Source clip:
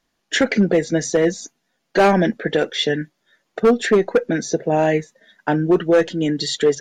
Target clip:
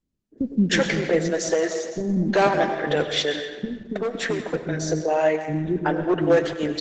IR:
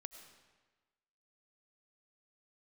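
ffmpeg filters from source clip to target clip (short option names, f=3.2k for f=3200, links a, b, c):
-filter_complex "[0:a]asplit=3[a][b][c];[a]afade=t=out:st=0.69:d=0.02[d];[b]bandreject=f=50:t=h:w=6,bandreject=f=100:t=h:w=6,bandreject=f=150:t=h:w=6,afade=t=in:st=0.69:d=0.02,afade=t=out:st=1.38:d=0.02[e];[c]afade=t=in:st=1.38:d=0.02[f];[d][e][f]amix=inputs=3:normalize=0,asplit=3[g][h][i];[g]afade=t=out:st=3.63:d=0.02[j];[h]acompressor=threshold=-19dB:ratio=10,afade=t=in:st=3.63:d=0.02,afade=t=out:st=4.49:d=0.02[k];[i]afade=t=in:st=4.49:d=0.02[l];[j][k][l]amix=inputs=3:normalize=0,asettb=1/sr,asplit=3[m][n][o];[m]atrim=end=4.994[p];[n]atrim=start=4.99:end=5.89,asetpts=PTS-STARTPTS,afade=t=in:d=0.004:c=qsin,afade=t=out:st=0.896:d=0.004:c=qsin,highshelf=f=6.4k:g=-11.5[q];[o]atrim=start=5.886[r];[p][q]acrossfade=d=0.004:c1=hsin:c2=qsin[s];[s][r]acrossfade=d=0.004:c1=qsin:c2=hsin,acrossover=split=320[t][u];[u]adelay=380[v];[t][v]amix=inputs=2:normalize=0[w];[1:a]atrim=start_sample=2205[x];[w][x]afir=irnorm=-1:irlink=0,volume=4dB" -ar 48000 -c:a libopus -b:a 12k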